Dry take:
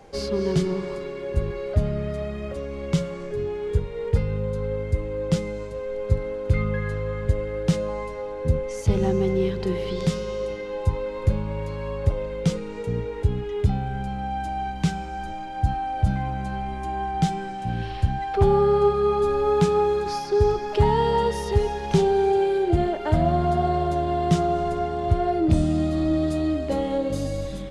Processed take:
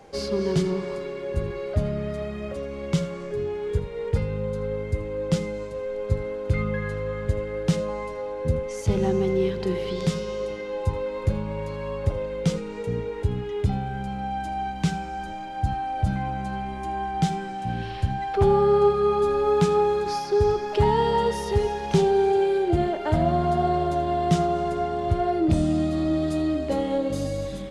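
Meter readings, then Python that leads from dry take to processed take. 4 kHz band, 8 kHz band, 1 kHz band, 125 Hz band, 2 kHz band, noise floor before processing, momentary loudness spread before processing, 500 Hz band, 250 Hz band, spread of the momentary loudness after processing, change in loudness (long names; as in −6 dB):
0.0 dB, 0.0 dB, 0.0 dB, −2.0 dB, 0.0 dB, −33 dBFS, 10 LU, 0.0 dB, −0.5 dB, 10 LU, −1.0 dB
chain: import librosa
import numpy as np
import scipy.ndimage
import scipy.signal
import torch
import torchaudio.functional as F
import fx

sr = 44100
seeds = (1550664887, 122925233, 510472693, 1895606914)

y = fx.low_shelf(x, sr, hz=65.0, db=-8.0)
y = y + 10.0 ** (-16.5 / 20.0) * np.pad(y, (int(81 * sr / 1000.0), 0))[:len(y)]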